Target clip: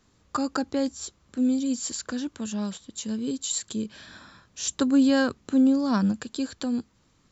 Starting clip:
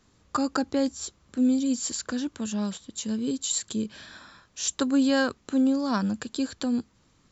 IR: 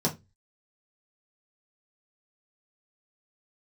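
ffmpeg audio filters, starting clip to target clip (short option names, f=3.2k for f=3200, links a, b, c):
-filter_complex "[0:a]asettb=1/sr,asplit=3[a][b][c];[a]atrim=end=4.074[d];[b]atrim=start=4.07:end=6.12,asetpts=PTS-STARTPTS,afade=t=in:d=0.004:c=qsin,afade=t=out:st=2.046:d=0.004:c=qsin,equalizer=f=130:w=0.46:g=6[e];[c]atrim=start=6.116[f];[d][e]acrossfade=d=0.004:c1=hsin:c2=qsin[g];[g][f]acrossfade=d=0.004:c1=qsin:c2=hsin,volume=-1dB"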